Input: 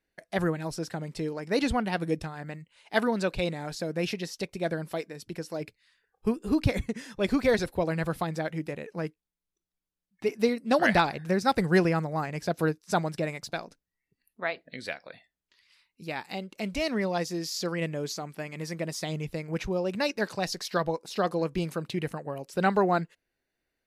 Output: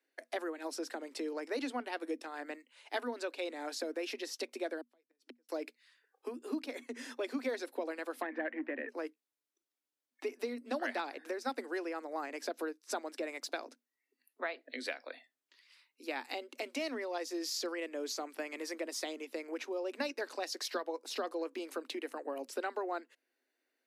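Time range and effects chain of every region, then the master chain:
4.81–5.49 s: treble shelf 10 kHz -12 dB + inverted gate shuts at -32 dBFS, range -41 dB
8.22–8.89 s: waveshaping leveller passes 2 + cabinet simulation 180–2300 Hz, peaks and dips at 240 Hz +9 dB, 440 Hz -7 dB, 830 Hz -4 dB, 1.3 kHz -6 dB, 1.8 kHz +9 dB
whole clip: compression 6:1, threshold -33 dBFS; Chebyshev high-pass 240 Hz, order 10

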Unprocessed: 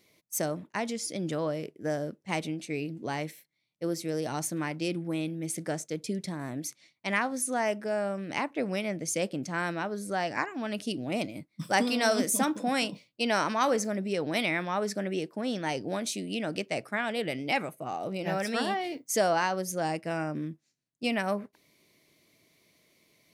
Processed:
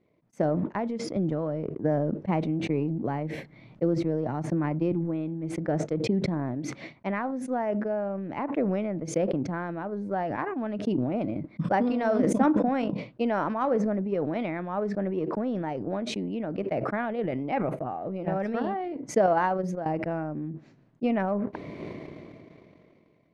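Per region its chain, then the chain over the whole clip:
1.16–4.92 s: bass shelf 150 Hz +7 dB + three bands compressed up and down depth 40%
19.26–19.86 s: bass shelf 420 Hz -3 dB + upward expansion 2.5:1, over -36 dBFS
whole clip: Bessel low-pass 860 Hz, order 2; transient shaper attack +7 dB, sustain -9 dB; decay stretcher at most 21 dB/s

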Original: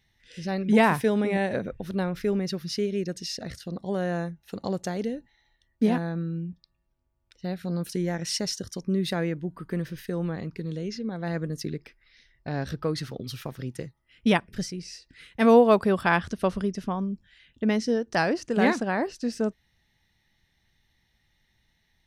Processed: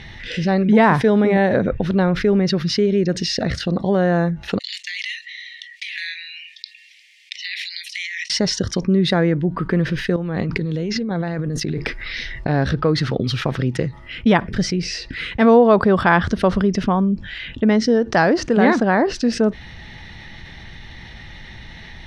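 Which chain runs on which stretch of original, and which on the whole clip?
4.59–8.30 s: steep high-pass 1.9 kHz 96 dB/octave + compressor with a negative ratio -52 dBFS
10.16–12.49 s: treble shelf 9 kHz +11 dB + compressor with a negative ratio -40 dBFS
whole clip: low-pass 3.5 kHz 12 dB/octave; dynamic bell 2.6 kHz, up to -7 dB, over -51 dBFS, Q 3.5; level flattener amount 50%; trim +4 dB

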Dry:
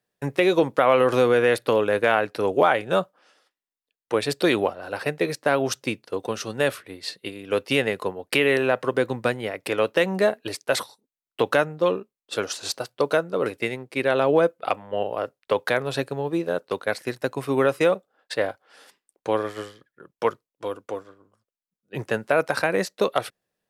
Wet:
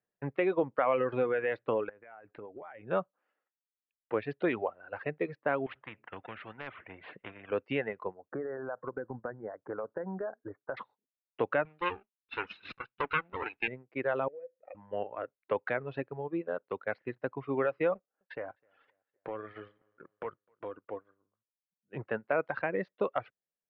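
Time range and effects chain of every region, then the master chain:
1.89–2.88 s: compression 16:1, threshold -31 dBFS + distance through air 180 m
5.66–7.51 s: steep low-pass 3 kHz + hard clipper -10.5 dBFS + spectrum-flattening compressor 4:1
8.14–10.77 s: elliptic low-pass 1.6 kHz + compression 12:1, threshold -22 dBFS
11.65–13.68 s: comb filter that takes the minimum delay 0.76 ms + frequency weighting D
14.28–14.75 s: companding laws mixed up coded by mu + cascade formant filter e + compression 3:1, threshold -31 dBFS
17.95–20.86 s: waveshaping leveller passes 1 + compression 3:1, threshold -28 dBFS + feedback delay 256 ms, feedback 42%, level -21.5 dB
whole clip: inverse Chebyshev low-pass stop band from 7.4 kHz, stop band 60 dB; reverb removal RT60 1.2 s; trim -8.5 dB

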